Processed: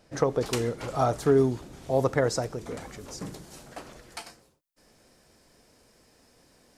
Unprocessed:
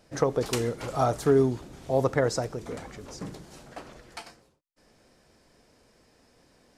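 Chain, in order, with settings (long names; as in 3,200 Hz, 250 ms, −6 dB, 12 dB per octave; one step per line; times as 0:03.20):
high-shelf EQ 7,500 Hz −2.5 dB, from 0:01.38 +3 dB, from 0:02.81 +9.5 dB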